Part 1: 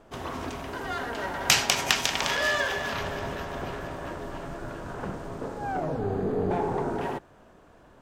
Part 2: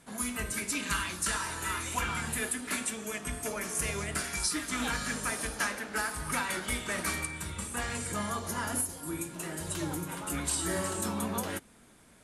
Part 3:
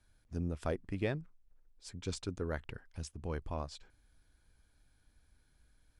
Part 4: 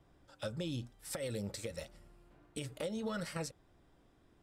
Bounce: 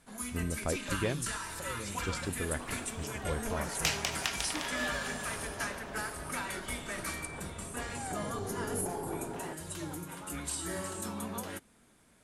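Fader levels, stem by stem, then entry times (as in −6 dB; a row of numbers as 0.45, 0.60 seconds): −10.5, −5.5, +1.5, −4.0 decibels; 2.35, 0.00, 0.00, 0.45 seconds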